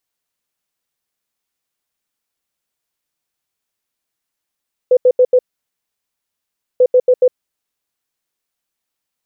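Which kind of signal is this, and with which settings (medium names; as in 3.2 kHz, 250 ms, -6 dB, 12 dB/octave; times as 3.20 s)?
beep pattern sine 503 Hz, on 0.06 s, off 0.08 s, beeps 4, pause 1.41 s, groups 2, -6 dBFS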